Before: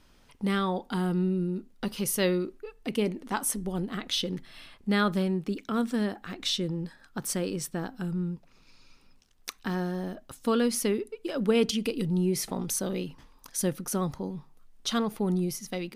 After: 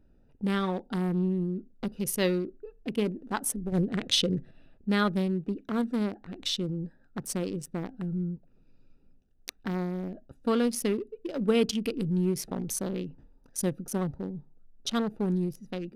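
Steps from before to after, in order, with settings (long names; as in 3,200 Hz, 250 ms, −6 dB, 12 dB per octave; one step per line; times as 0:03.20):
adaptive Wiener filter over 41 samples
0:03.72–0:04.51: octave-band graphic EQ 125/500/2,000/4,000/8,000 Hz +11/+8/+6/+3/+9 dB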